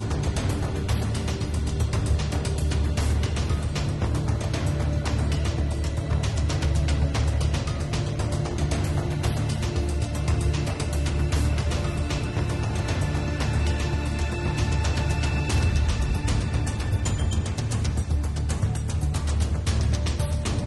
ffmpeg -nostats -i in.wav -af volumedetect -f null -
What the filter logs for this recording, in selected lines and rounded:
mean_volume: -24.2 dB
max_volume: -12.4 dB